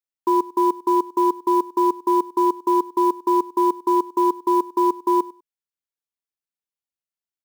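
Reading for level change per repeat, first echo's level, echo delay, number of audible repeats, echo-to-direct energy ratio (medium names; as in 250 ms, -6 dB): -15.5 dB, -19.5 dB, 99 ms, 2, -19.5 dB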